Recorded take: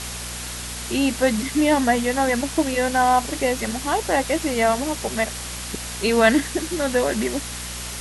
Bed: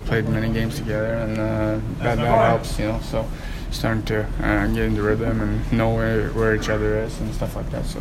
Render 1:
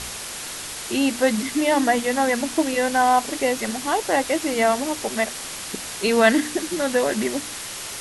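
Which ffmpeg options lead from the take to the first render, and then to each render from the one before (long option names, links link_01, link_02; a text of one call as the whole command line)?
ffmpeg -i in.wav -af "bandreject=frequency=60:width_type=h:width=4,bandreject=frequency=120:width_type=h:width=4,bandreject=frequency=180:width_type=h:width=4,bandreject=frequency=240:width_type=h:width=4,bandreject=frequency=300:width_type=h:width=4" out.wav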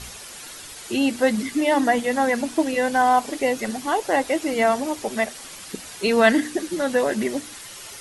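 ffmpeg -i in.wav -af "afftdn=noise_reduction=9:noise_floor=-33" out.wav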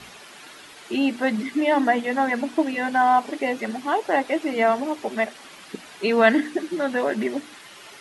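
ffmpeg -i in.wav -filter_complex "[0:a]acrossover=split=150 3800:gain=0.112 1 0.224[link_01][link_02][link_03];[link_01][link_02][link_03]amix=inputs=3:normalize=0,bandreject=frequency=510:width=12" out.wav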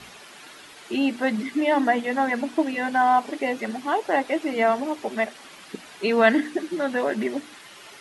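ffmpeg -i in.wav -af "volume=-1dB" out.wav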